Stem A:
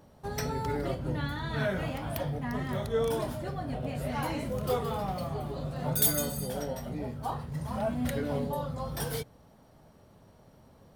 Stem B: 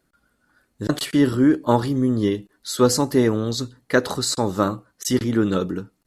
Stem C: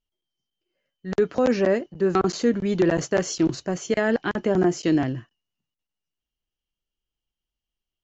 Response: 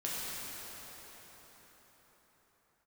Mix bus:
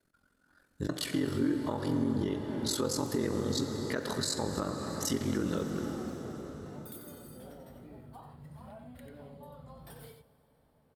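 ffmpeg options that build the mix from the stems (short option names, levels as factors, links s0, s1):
-filter_complex "[0:a]equalizer=f=6000:t=o:w=0.36:g=-12.5,acompressor=threshold=0.0224:ratio=6,adelay=900,volume=0.2,asplit=3[s0][s1][s2];[s1]volume=0.1[s3];[s2]volume=0.473[s4];[1:a]acompressor=threshold=0.0501:ratio=1.5,aeval=exprs='val(0)*sin(2*PI*22*n/s)':c=same,dynaudnorm=f=100:g=13:m=1.78,volume=0.531,asplit=2[s5][s6];[s6]volume=0.316[s7];[3:a]atrim=start_sample=2205[s8];[s3][s7]amix=inputs=2:normalize=0[s9];[s9][s8]afir=irnorm=-1:irlink=0[s10];[s4]aecho=0:1:91:1[s11];[s0][s5][s10][s11]amix=inputs=4:normalize=0,alimiter=limit=0.0944:level=0:latency=1:release=290"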